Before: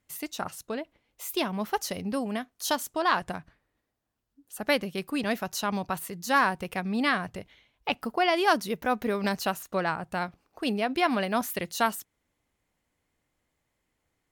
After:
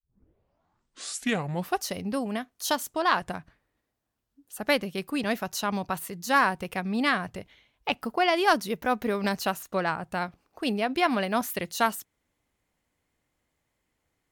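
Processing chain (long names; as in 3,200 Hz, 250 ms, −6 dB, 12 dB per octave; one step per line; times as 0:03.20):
turntable start at the beginning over 1.89 s
harmonic generator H 3 −20 dB, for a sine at −9 dBFS
soft clipping −8.5 dBFS, distortion −32 dB
level +3.5 dB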